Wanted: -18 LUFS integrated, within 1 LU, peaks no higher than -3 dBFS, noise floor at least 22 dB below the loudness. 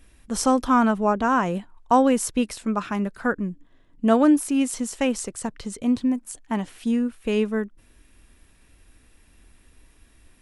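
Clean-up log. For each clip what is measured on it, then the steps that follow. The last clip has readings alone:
loudness -23.5 LUFS; peak level -5.5 dBFS; loudness target -18.0 LUFS
-> trim +5.5 dB; peak limiter -3 dBFS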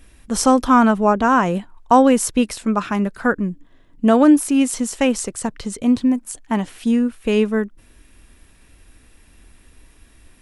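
loudness -18.0 LUFS; peak level -3.0 dBFS; noise floor -51 dBFS

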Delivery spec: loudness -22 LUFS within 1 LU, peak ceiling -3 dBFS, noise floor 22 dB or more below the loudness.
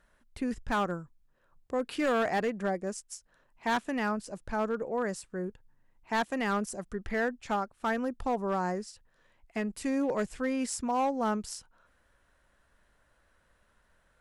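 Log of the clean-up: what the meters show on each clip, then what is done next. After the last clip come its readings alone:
clipped samples 1.5%; clipping level -23.5 dBFS; loudness -32.5 LUFS; peak level -23.5 dBFS; loudness target -22.0 LUFS
-> clip repair -23.5 dBFS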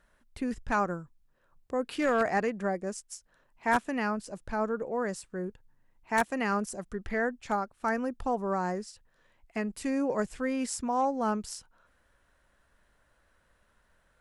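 clipped samples 0.0%; loudness -31.5 LUFS; peak level -14.5 dBFS; loudness target -22.0 LUFS
-> trim +9.5 dB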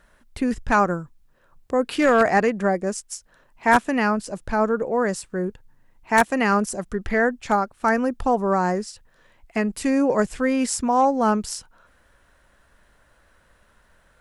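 loudness -22.0 LUFS; peak level -5.0 dBFS; noise floor -60 dBFS

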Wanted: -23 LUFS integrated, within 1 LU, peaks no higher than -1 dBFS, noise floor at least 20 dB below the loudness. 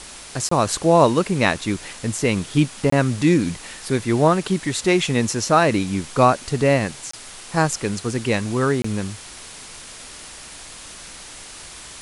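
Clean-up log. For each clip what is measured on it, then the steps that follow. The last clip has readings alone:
dropouts 4; longest dropout 24 ms; noise floor -39 dBFS; noise floor target -40 dBFS; loudness -20.0 LUFS; peak level -2.5 dBFS; loudness target -23.0 LUFS
-> interpolate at 0.49/2.90/7.11/8.82 s, 24 ms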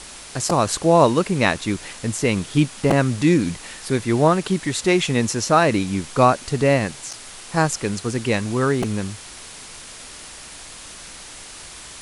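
dropouts 0; noise floor -39 dBFS; noise floor target -40 dBFS
-> noise reduction 6 dB, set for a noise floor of -39 dBFS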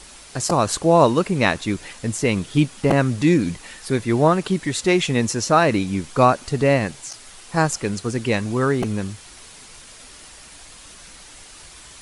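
noise floor -44 dBFS; loudness -20.0 LUFS; peak level -2.5 dBFS; loudness target -23.0 LUFS
-> trim -3 dB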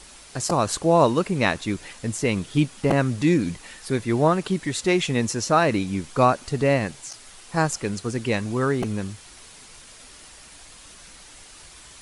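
loudness -23.0 LUFS; peak level -5.5 dBFS; noise floor -47 dBFS

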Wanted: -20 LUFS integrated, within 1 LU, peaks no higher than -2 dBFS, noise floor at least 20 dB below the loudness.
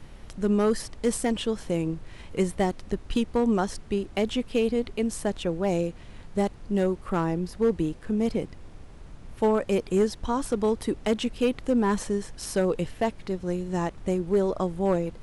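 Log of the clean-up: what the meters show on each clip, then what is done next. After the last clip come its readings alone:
clipped samples 0.6%; clipping level -15.5 dBFS; noise floor -46 dBFS; noise floor target -48 dBFS; loudness -27.5 LUFS; peak level -15.5 dBFS; loudness target -20.0 LUFS
-> clip repair -15.5 dBFS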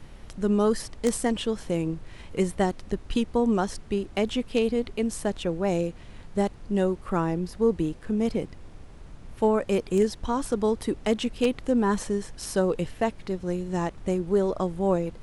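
clipped samples 0.0%; noise floor -46 dBFS; noise floor target -47 dBFS
-> noise print and reduce 6 dB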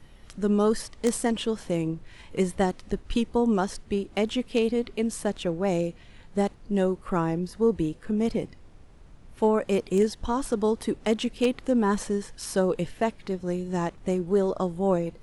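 noise floor -51 dBFS; loudness -27.0 LUFS; peak level -7.0 dBFS; loudness target -20.0 LUFS
-> trim +7 dB; peak limiter -2 dBFS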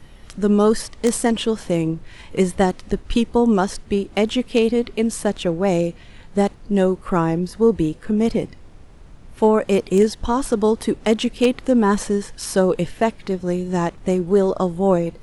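loudness -20.0 LUFS; peak level -2.0 dBFS; noise floor -44 dBFS

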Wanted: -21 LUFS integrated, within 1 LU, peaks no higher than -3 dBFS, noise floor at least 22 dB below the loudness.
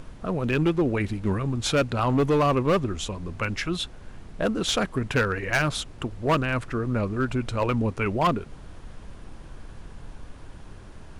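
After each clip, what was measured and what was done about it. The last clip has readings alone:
clipped samples 1.6%; clipping level -16.5 dBFS; noise floor -44 dBFS; noise floor target -48 dBFS; loudness -25.5 LUFS; peak level -16.5 dBFS; loudness target -21.0 LUFS
-> clip repair -16.5 dBFS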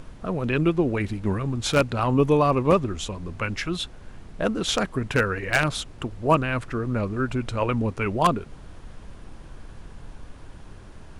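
clipped samples 0.0%; noise floor -44 dBFS; noise floor target -47 dBFS
-> noise print and reduce 6 dB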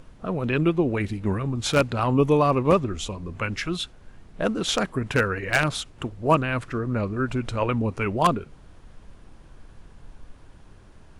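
noise floor -50 dBFS; loudness -24.5 LUFS; peak level -7.5 dBFS; loudness target -21.0 LUFS
-> trim +3.5 dB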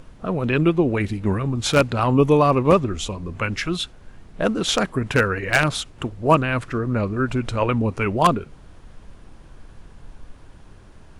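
loudness -21.0 LUFS; peak level -4.0 dBFS; noise floor -46 dBFS

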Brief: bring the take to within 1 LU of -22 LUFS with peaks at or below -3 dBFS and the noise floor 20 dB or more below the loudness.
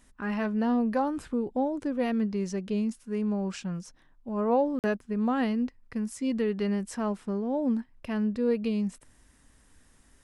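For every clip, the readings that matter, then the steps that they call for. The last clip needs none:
dropouts 1; longest dropout 48 ms; loudness -29.5 LUFS; peak level -13.5 dBFS; loudness target -22.0 LUFS
-> interpolate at 4.79 s, 48 ms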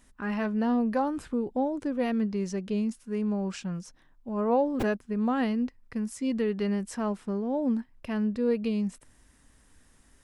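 dropouts 0; loudness -29.5 LUFS; peak level -13.5 dBFS; loudness target -22.0 LUFS
-> trim +7.5 dB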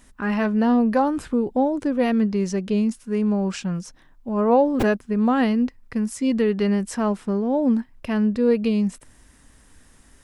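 loudness -22.0 LUFS; peak level -6.0 dBFS; noise floor -54 dBFS

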